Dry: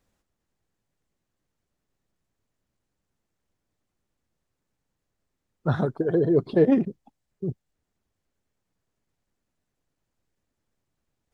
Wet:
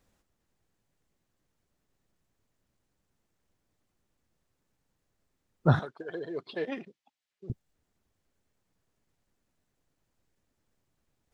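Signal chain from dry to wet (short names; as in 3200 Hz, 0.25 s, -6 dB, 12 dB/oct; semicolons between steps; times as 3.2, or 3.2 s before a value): 5.79–7.5 band-pass 3100 Hz, Q 0.98; gain +2 dB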